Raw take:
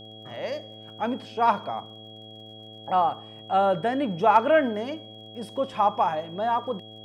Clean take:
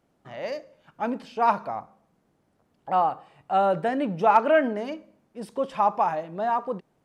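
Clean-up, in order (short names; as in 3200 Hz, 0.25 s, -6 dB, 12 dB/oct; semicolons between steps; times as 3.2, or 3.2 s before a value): de-click; de-hum 108.8 Hz, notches 7; notch 3300 Hz, Q 30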